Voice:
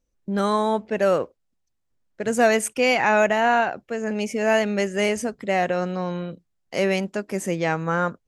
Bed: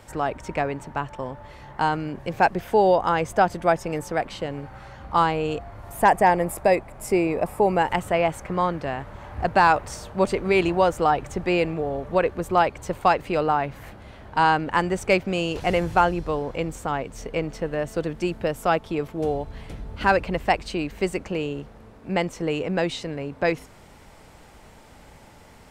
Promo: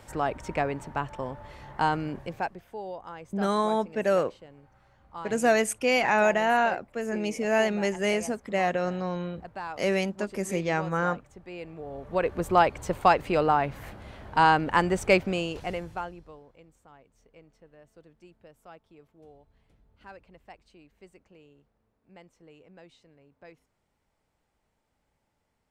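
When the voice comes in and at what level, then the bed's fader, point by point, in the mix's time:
3.05 s, −4.0 dB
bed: 0:02.16 −2.5 dB
0:02.66 −20 dB
0:11.50 −20 dB
0:12.41 −1 dB
0:15.22 −1 dB
0:16.62 −28 dB

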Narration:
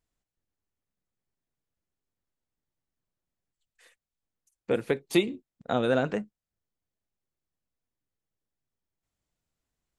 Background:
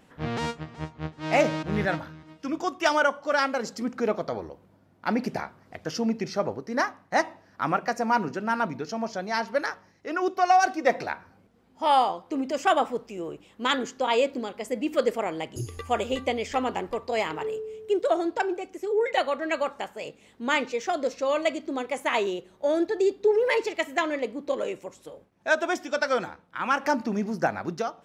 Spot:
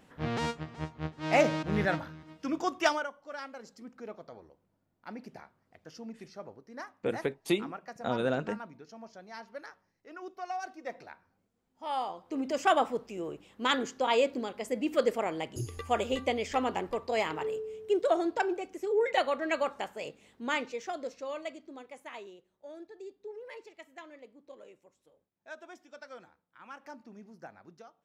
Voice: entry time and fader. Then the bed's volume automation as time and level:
2.35 s, −5.0 dB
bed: 0:02.86 −2.5 dB
0:03.09 −17.5 dB
0:11.70 −17.5 dB
0:12.49 −3 dB
0:20.06 −3 dB
0:22.53 −22.5 dB

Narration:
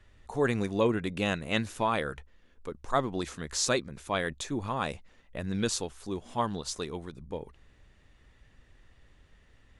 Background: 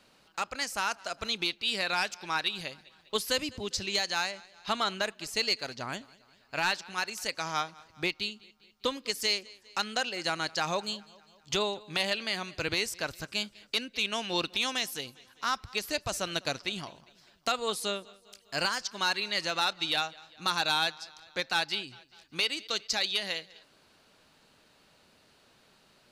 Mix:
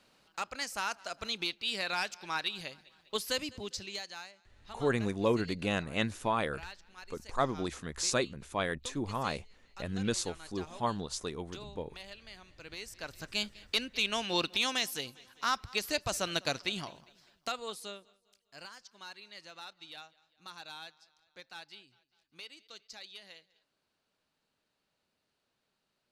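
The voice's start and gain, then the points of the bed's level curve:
4.45 s, −2.5 dB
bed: 0:03.60 −4 dB
0:04.37 −18.5 dB
0:12.58 −18.5 dB
0:13.42 −0.5 dB
0:16.95 −0.5 dB
0:18.55 −19 dB

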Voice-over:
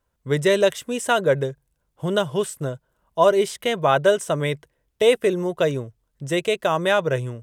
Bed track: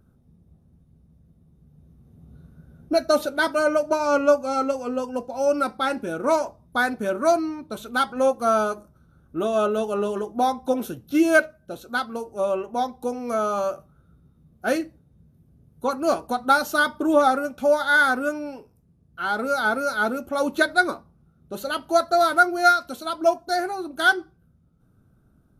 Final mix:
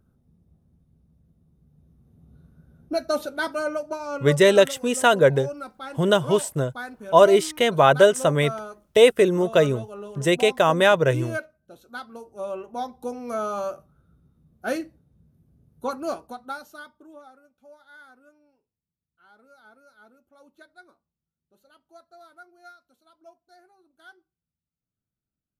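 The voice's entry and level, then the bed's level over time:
3.95 s, +2.5 dB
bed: 0:03.52 −5 dB
0:04.38 −13 dB
0:11.63 −13 dB
0:13.10 −4 dB
0:15.92 −4 dB
0:17.29 −31 dB

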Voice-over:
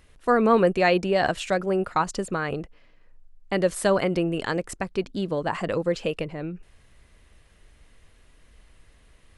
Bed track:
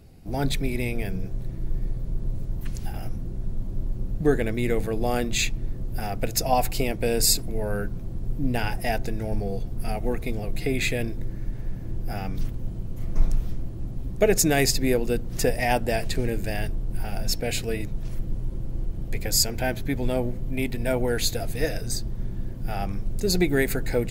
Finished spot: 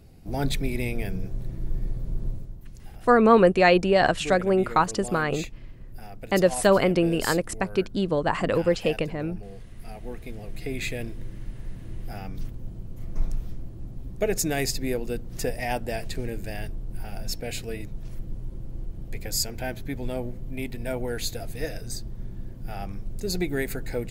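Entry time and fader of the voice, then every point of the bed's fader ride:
2.80 s, +2.5 dB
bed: 0:02.28 −1 dB
0:02.60 −13 dB
0:09.68 −13 dB
0:10.84 −5.5 dB

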